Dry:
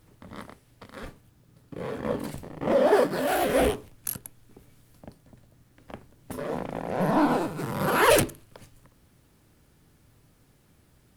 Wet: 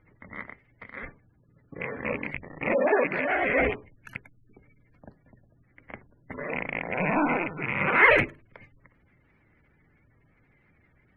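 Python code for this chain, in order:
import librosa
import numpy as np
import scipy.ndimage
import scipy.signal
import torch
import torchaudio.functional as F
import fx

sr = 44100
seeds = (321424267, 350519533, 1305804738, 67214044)

y = fx.rattle_buzz(x, sr, strikes_db=-33.0, level_db=-23.0)
y = fx.spec_gate(y, sr, threshold_db=-25, keep='strong')
y = fx.lowpass_res(y, sr, hz=2100.0, q=8.7)
y = F.gain(torch.from_numpy(y), -3.5).numpy()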